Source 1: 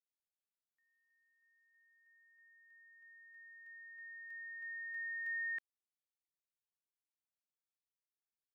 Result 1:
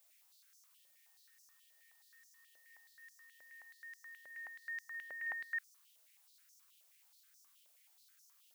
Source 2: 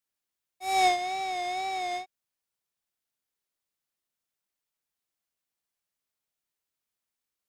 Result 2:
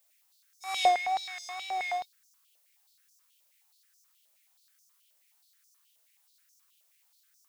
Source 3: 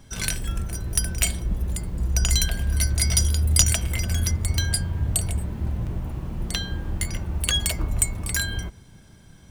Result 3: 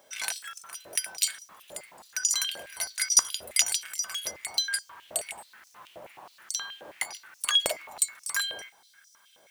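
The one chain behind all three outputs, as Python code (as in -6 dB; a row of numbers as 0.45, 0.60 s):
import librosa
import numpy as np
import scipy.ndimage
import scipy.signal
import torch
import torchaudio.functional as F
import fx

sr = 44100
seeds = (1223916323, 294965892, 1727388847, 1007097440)

y = fx.dmg_noise_colour(x, sr, seeds[0], colour='blue', level_db=-64.0)
y = fx.filter_held_highpass(y, sr, hz=9.4, low_hz=580.0, high_hz=5800.0)
y = y * librosa.db_to_amplitude(-5.5)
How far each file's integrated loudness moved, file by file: -3.0, -1.5, -3.5 LU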